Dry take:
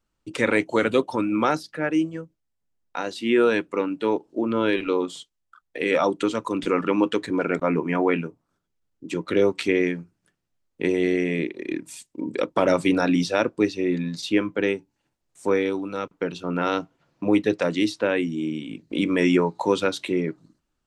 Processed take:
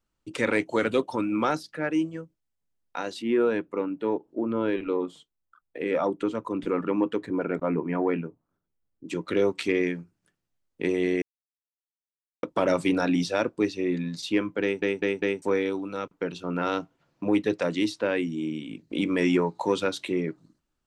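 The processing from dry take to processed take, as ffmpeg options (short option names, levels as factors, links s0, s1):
-filter_complex "[0:a]asettb=1/sr,asplit=3[s0][s1][s2];[s0]atrim=end=3.224[s3];[s1]atrim=start=3.22:end=9.06,asetpts=PTS-STARTPTS,afade=t=in:d=0.004:c=qsin,afade=t=out:st=5.836:d=0.004:c=qsin,equalizer=f=6500:w=0.34:g=-13[s4];[s2]atrim=start=9.056[s5];[s3][s4]acrossfade=d=0.004:c1=hsin:c2=qsin[s6];[s6][s5]acrossfade=d=0.004:c1=qsin:c2=hsin,asplit=7[s7][s8][s9][s10][s11][s12][s13];[s7]atrim=end=11.22,asetpts=PTS-STARTPTS,afade=t=out:st=11.216:d=0.004:c=hsin[s14];[s8]atrim=start=11.22:end=12.43,asetpts=PTS-STARTPTS,volume=0[s15];[s9]atrim=start=12.43:end=14.822,asetpts=PTS-STARTPTS,afade=t=in:d=0.004:c=hsin[s16];[s10]atrim=start=14.618:end=14.822[s17];[s11]atrim=start=14.618:end=14.822[s18];[s12]atrim=start=14.618:end=14.822[s19];[s13]atrim=start=15.418[s20];[s14][s15][s16]concat=n=3:v=0:a=1[s21];[s21][s17]acrossfade=d=0.004:c1=hsin:c2=hsin[s22];[s22][s18]acrossfade=d=0.004:c1=hsin:c2=hsin[s23];[s23][s19]acrossfade=d=0.004:c1=hsin:c2=hsin[s24];[s24][s20]acrossfade=d=0.004:c1=hsin:c2=hsin,acontrast=37,volume=0.376"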